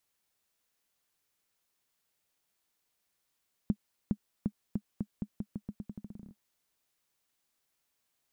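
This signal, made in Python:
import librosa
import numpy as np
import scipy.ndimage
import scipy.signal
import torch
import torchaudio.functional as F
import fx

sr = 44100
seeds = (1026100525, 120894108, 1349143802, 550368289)

y = fx.bouncing_ball(sr, first_gap_s=0.41, ratio=0.85, hz=207.0, decay_ms=62.0, level_db=-16.5)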